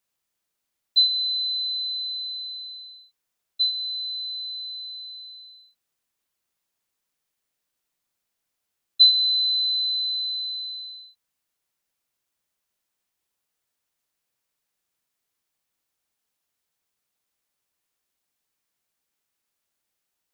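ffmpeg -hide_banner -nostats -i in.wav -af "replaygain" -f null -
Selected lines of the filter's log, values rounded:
track_gain = +2.4 dB
track_peak = 0.314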